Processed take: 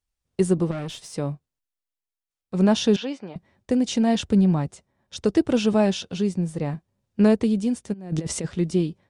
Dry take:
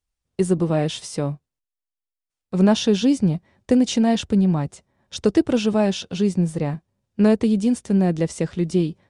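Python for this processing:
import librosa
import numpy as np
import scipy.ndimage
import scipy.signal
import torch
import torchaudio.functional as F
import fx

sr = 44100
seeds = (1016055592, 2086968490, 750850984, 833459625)

y = fx.over_compress(x, sr, threshold_db=-25.0, ratio=-0.5, at=(7.92, 8.44), fade=0.02)
y = fx.tremolo_shape(y, sr, shape='triangle', hz=0.74, depth_pct=45)
y = fx.tube_stage(y, sr, drive_db=27.0, bias=0.5, at=(0.71, 1.13))
y = fx.bandpass_edges(y, sr, low_hz=600.0, high_hz=2900.0, at=(2.96, 3.36))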